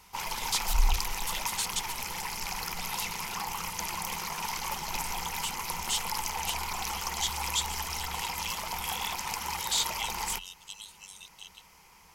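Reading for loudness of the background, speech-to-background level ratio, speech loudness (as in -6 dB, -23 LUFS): -33.5 LUFS, -2.5 dB, -36.0 LUFS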